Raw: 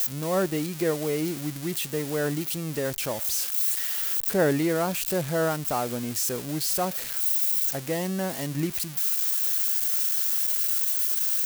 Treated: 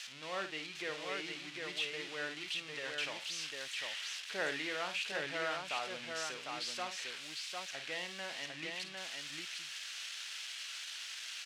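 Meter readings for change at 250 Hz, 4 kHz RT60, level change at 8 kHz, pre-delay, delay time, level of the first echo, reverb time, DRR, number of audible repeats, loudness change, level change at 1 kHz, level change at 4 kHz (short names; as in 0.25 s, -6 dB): -21.5 dB, none, -16.5 dB, none, 51 ms, -9.0 dB, none, none, 2, -15.0 dB, -10.0 dB, -3.0 dB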